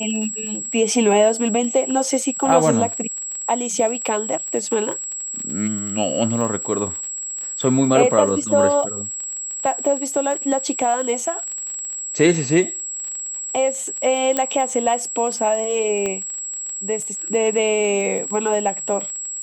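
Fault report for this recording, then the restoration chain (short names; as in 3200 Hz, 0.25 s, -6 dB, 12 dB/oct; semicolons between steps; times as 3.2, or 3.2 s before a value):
crackle 29/s -27 dBFS
tone 7700 Hz -26 dBFS
14.37 pop -5 dBFS
16.06 pop -12 dBFS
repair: de-click; notch 7700 Hz, Q 30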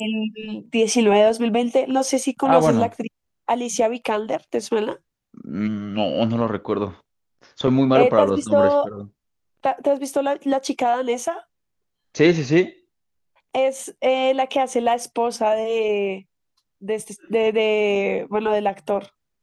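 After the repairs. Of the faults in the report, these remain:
none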